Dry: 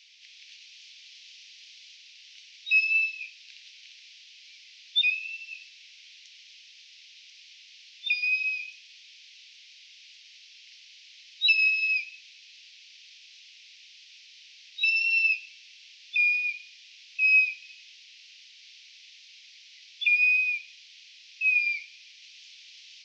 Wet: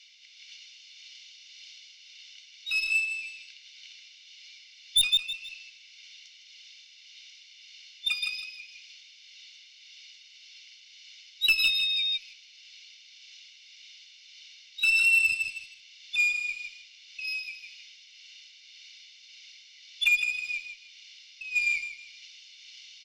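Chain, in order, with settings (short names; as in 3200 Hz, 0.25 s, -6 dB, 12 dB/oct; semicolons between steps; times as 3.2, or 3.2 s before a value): comb 1.4 ms, depth 83%; added harmonics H 2 -23 dB, 3 -22 dB, 7 -25 dB, 8 -38 dB, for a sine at -10.5 dBFS; on a send: feedback echo 0.158 s, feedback 26%, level -8.5 dB; on the sum: tremolo 1.8 Hz, depth 34%; in parallel at -8.5 dB: sine folder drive 12 dB, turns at -9 dBFS; 11.62–12.16 on the sum: whine 3700 Hz -22 dBFS; gain -3 dB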